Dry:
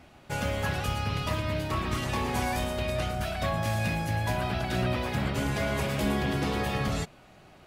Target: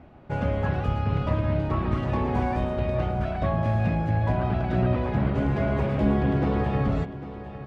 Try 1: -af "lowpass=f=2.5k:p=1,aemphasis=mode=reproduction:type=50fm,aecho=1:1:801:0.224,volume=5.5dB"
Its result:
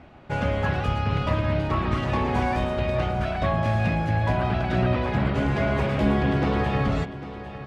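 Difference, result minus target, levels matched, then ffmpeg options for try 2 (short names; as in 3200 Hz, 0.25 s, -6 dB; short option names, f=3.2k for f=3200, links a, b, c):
2000 Hz band +5.5 dB
-af "lowpass=f=750:p=1,aemphasis=mode=reproduction:type=50fm,aecho=1:1:801:0.224,volume=5.5dB"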